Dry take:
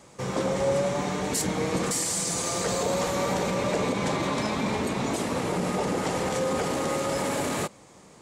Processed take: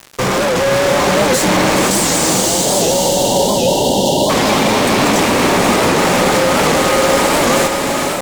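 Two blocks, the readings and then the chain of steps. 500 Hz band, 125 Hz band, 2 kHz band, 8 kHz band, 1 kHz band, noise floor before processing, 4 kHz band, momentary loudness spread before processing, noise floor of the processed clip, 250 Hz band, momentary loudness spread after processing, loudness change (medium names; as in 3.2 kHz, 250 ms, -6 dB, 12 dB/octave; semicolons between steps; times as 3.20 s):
+14.0 dB, +11.0 dB, +16.5 dB, +14.0 dB, +15.5 dB, -52 dBFS, +17.5 dB, 3 LU, -17 dBFS, +13.0 dB, 2 LU, +14.5 dB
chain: band-stop 470 Hz, Q 14; in parallel at -12 dB: word length cut 6-bit, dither none; on the sum: peaking EQ 160 Hz -4.5 dB 1.3 oct; hard clipper -23 dBFS, distortion -14 dB; high-pass 110 Hz 12 dB/octave; fuzz box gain 41 dB, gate -46 dBFS; upward compressor, threshold -27 dBFS; spectral selection erased 1.89–4.30 s, 980–2700 Hz; treble shelf 6.3 kHz -4.5 dB; on a send: echo that smears into a reverb 505 ms, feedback 44%, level -3 dB; on the sum: warped record 78 rpm, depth 160 cents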